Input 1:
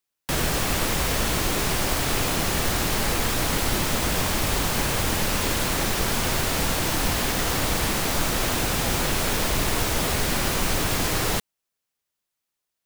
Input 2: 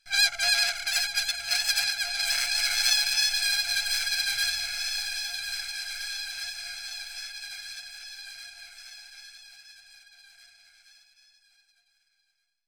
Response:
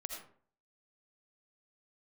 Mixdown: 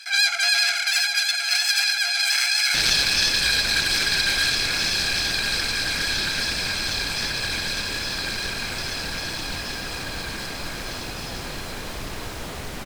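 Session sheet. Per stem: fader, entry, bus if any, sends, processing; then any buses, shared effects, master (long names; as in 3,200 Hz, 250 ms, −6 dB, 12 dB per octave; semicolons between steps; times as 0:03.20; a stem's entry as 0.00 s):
−8.5 dB, 2.45 s, no send, no processing
+0.5 dB, 0.00 s, send −6 dB, high-pass filter 790 Hz 24 dB per octave; envelope flattener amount 50%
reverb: on, RT60 0.50 s, pre-delay 40 ms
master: high-shelf EQ 6,600 Hz −5.5 dB; highs frequency-modulated by the lows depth 0.2 ms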